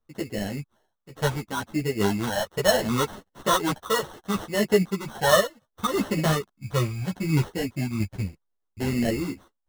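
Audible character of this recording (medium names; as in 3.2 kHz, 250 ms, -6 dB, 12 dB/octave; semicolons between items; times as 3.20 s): phasing stages 12, 0.69 Hz, lowest notch 280–1100 Hz; random-step tremolo; aliases and images of a low sample rate 2.4 kHz, jitter 0%; a shimmering, thickened sound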